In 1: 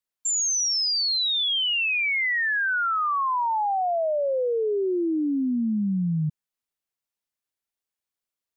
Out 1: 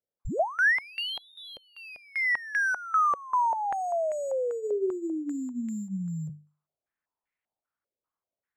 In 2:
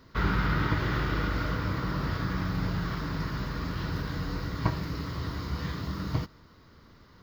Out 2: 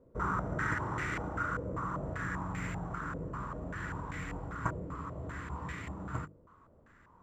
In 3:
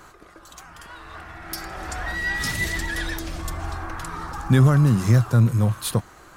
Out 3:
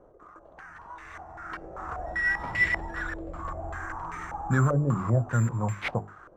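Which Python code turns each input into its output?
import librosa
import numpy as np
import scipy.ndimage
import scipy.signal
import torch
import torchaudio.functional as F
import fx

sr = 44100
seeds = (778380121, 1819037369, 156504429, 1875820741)

y = fx.hum_notches(x, sr, base_hz=50, count=9)
y = (np.kron(y[::6], np.eye(6)[0]) * 6)[:len(y)]
y = fx.filter_held_lowpass(y, sr, hz=5.1, low_hz=530.0, high_hz=2100.0)
y = F.gain(torch.from_numpy(y), -8.0).numpy()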